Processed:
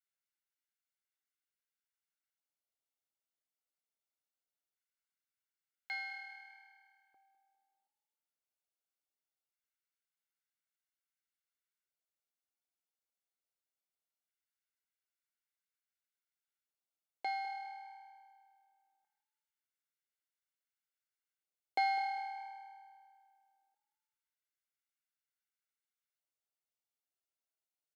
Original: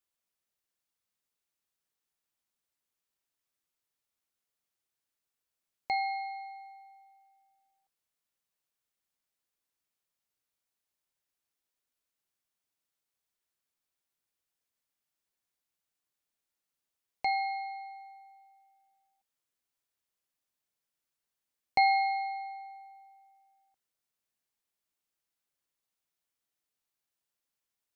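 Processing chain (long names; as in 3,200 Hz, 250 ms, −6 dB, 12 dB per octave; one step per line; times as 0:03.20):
lower of the sound and its delayed copy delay 1.4 ms
auto-filter high-pass square 0.21 Hz 340–1,600 Hz
echo with shifted repeats 201 ms, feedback 38%, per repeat +39 Hz, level −15.5 dB
level −9 dB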